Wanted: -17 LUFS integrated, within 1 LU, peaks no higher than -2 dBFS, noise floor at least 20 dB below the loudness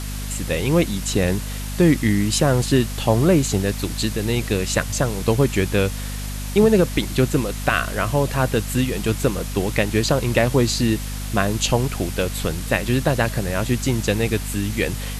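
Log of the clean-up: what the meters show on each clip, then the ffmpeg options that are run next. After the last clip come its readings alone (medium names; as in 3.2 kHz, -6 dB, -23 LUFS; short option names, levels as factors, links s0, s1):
hum 50 Hz; highest harmonic 250 Hz; hum level -26 dBFS; noise floor -28 dBFS; noise floor target -41 dBFS; loudness -20.5 LUFS; peak level -4.0 dBFS; loudness target -17.0 LUFS
-> -af "bandreject=f=50:t=h:w=6,bandreject=f=100:t=h:w=6,bandreject=f=150:t=h:w=6,bandreject=f=200:t=h:w=6,bandreject=f=250:t=h:w=6"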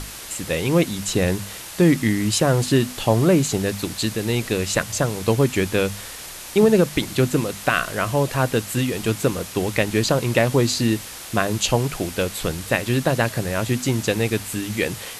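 hum not found; noise floor -36 dBFS; noise floor target -41 dBFS
-> -af "afftdn=nr=6:nf=-36"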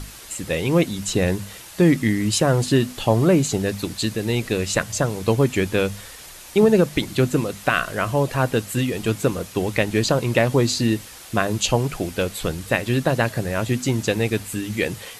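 noise floor -41 dBFS; noise floor target -42 dBFS
-> -af "afftdn=nr=6:nf=-41"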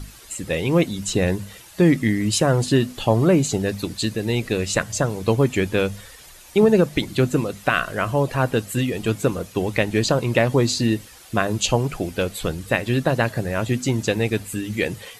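noise floor -45 dBFS; loudness -21.5 LUFS; peak level -4.5 dBFS; loudness target -17.0 LUFS
-> -af "volume=1.68,alimiter=limit=0.794:level=0:latency=1"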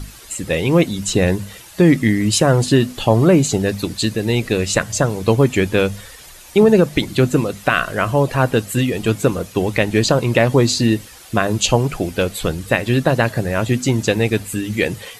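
loudness -17.0 LUFS; peak level -2.0 dBFS; noise floor -40 dBFS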